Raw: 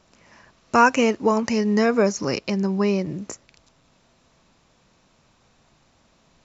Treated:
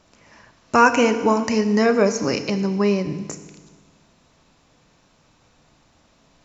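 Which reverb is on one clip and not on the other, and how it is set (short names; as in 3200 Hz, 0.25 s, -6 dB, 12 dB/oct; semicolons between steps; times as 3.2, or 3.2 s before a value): FDN reverb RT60 1.4 s, low-frequency decay 1.25×, high-frequency decay 1×, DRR 8.5 dB; gain +1.5 dB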